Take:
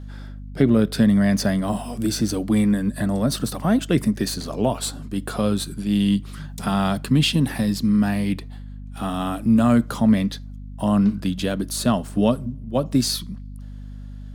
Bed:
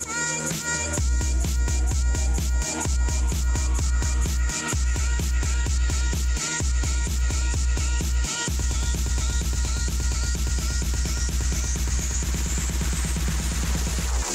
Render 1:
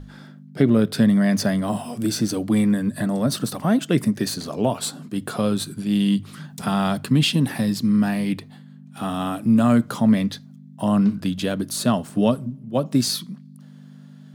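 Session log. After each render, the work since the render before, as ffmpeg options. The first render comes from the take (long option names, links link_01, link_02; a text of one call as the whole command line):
ffmpeg -i in.wav -af "bandreject=frequency=50:width_type=h:width=6,bandreject=frequency=100:width_type=h:width=6" out.wav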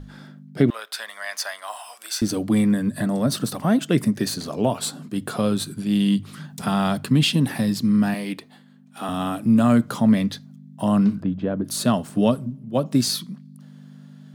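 ffmpeg -i in.wav -filter_complex "[0:a]asettb=1/sr,asplit=3[link_01][link_02][link_03];[link_01]atrim=end=0.704[link_04];[link_02]atrim=start=0.7:end=2.22,asetpts=PTS-STARTPTS,afade=type=in:duration=0.004:curve=qsin,afade=type=out:start_time=1.516:duration=0.004:curve=qsin,highpass=frequency=840:width=0.5412,highpass=frequency=840:width=1.3066[link_05];[link_03]atrim=start=2.216[link_06];[link_04][link_05]acrossfade=duration=0.004:curve1=hsin:curve2=qsin[link_07];[link_07][link_06]acrossfade=duration=0.004:curve1=qsin:curve2=hsin,asettb=1/sr,asplit=3[link_08][link_09][link_10];[link_08]atrim=end=8.144[link_11];[link_09]atrim=start=8.14:end=9.09,asetpts=PTS-STARTPTS,afade=type=in:duration=0.004:curve=qsin,afade=type=out:start_time=0.946:duration=0.004:curve=qsin,highpass=290[link_12];[link_10]atrim=start=9.086[link_13];[link_11][link_12]acrossfade=duration=0.004:curve1=hsin:curve2=qsin[link_14];[link_14][link_13]acrossfade=duration=0.004:curve1=qsin:curve2=hsin,asplit=3[link_15][link_16][link_17];[link_15]afade=type=out:start_time=11.21:duration=0.02[link_18];[link_16]lowpass=1100,afade=type=in:start_time=11.21:duration=0.02,afade=type=out:start_time=11.64:duration=0.02[link_19];[link_17]afade=type=in:start_time=11.64:duration=0.02[link_20];[link_18][link_19][link_20]amix=inputs=3:normalize=0" out.wav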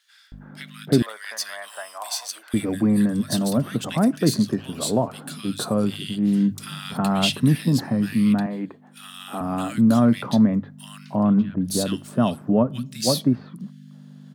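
ffmpeg -i in.wav -filter_complex "[0:a]acrossover=split=1700[link_01][link_02];[link_01]adelay=320[link_03];[link_03][link_02]amix=inputs=2:normalize=0" out.wav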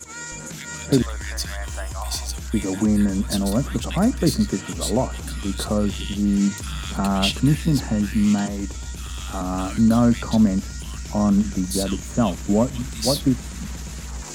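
ffmpeg -i in.wav -i bed.wav -filter_complex "[1:a]volume=-8dB[link_01];[0:a][link_01]amix=inputs=2:normalize=0" out.wav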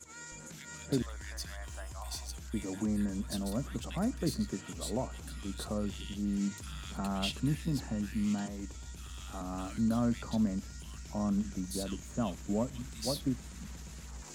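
ffmpeg -i in.wav -af "volume=-13.5dB" out.wav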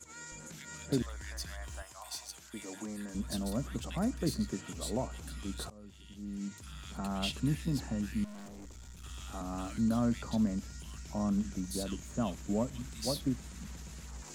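ffmpeg -i in.wav -filter_complex "[0:a]asettb=1/sr,asplit=3[link_01][link_02][link_03];[link_01]atrim=end=1.824[link_04];[link_02]atrim=start=1.82:end=3.15,asetpts=PTS-STARTPTS,afade=type=in:duration=0.004:curve=qsin,afade=type=out:start_time=1.326:duration=0.004:curve=qsin,highpass=frequency=640:poles=1[link_05];[link_03]atrim=start=3.146[link_06];[link_04][link_05]acrossfade=duration=0.004:curve1=hsin:curve2=qsin[link_07];[link_07][link_06]acrossfade=duration=0.004:curve1=qsin:curve2=hsin,asettb=1/sr,asplit=3[link_08][link_09][link_10];[link_08]atrim=end=8.244[link_11];[link_09]atrim=start=8.24:end=9.04,asetpts=PTS-STARTPTS,afade=type=in:duration=0.004:curve=qsin,afade=type=out:start_time=0.796:duration=0.004:curve=qsin,aeval=exprs='(tanh(200*val(0)+0.55)-tanh(0.55))/200':channel_layout=same[link_12];[link_10]atrim=start=9.036[link_13];[link_11][link_12]acrossfade=duration=0.004:curve1=hsin:curve2=qsin[link_14];[link_14][link_13]acrossfade=duration=0.004:curve1=qsin:curve2=hsin,asplit=2[link_15][link_16];[link_15]atrim=end=5.7,asetpts=PTS-STARTPTS,afade=type=out:start_time=5.696:duration=0.004:curve=hsin:silence=0.0707946[link_17];[link_16]atrim=start=5.7,asetpts=PTS-STARTPTS,afade=type=in:duration=1.71:silence=0.0707946[link_18];[link_17][link_18]concat=n=2:v=0:a=1" out.wav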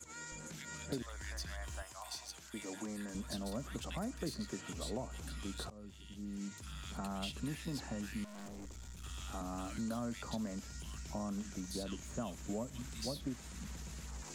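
ffmpeg -i in.wav -filter_complex "[0:a]acrossover=split=390|6500[link_01][link_02][link_03];[link_01]acompressor=threshold=-42dB:ratio=4[link_04];[link_02]acompressor=threshold=-42dB:ratio=4[link_05];[link_03]acompressor=threshold=-55dB:ratio=4[link_06];[link_04][link_05][link_06]amix=inputs=3:normalize=0" out.wav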